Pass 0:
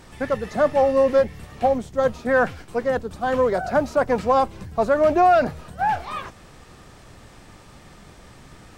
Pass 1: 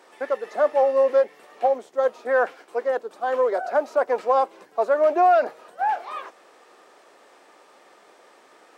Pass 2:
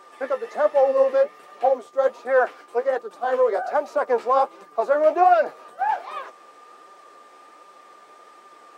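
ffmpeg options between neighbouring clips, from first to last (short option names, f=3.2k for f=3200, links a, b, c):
-af "highpass=f=390:w=0.5412,highpass=f=390:w=1.3066,highshelf=f=2k:g=-8.5"
-af "aeval=exprs='val(0)+0.00398*sin(2*PI*1200*n/s)':c=same,flanger=delay=5.1:depth=8.6:regen=38:speed=1.3:shape=sinusoidal,volume=4.5dB"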